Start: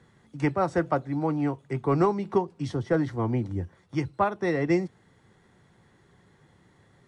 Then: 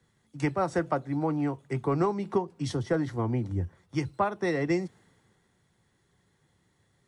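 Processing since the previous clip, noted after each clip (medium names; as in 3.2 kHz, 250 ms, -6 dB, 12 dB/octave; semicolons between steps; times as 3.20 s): treble shelf 6.8 kHz +8 dB; compression 2.5:1, threshold -27 dBFS, peak gain reduction 7 dB; three bands expanded up and down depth 40%; trim +1.5 dB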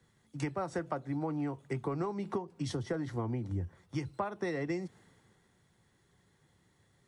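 compression 5:1, threshold -32 dBFS, peak gain reduction 10.5 dB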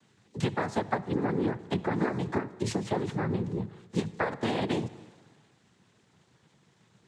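noise-vocoded speech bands 6; on a send at -17 dB: reverberation RT60 1.4 s, pre-delay 54 ms; on the sum: trim +6 dB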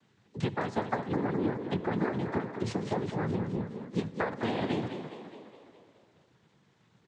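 distance through air 81 m; frequency-shifting echo 208 ms, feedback 57%, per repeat +31 Hz, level -9 dB; trim -2 dB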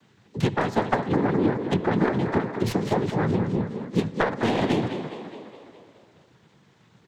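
tracing distortion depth 0.085 ms; trim +8 dB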